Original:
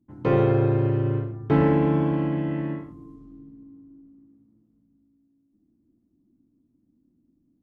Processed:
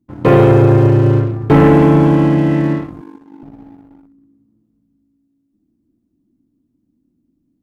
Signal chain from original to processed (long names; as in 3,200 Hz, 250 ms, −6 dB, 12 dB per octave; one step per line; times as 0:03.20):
0:03.01–0:03.43: high-pass filter 230 Hz 24 dB per octave
leveller curve on the samples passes 2
level +6.5 dB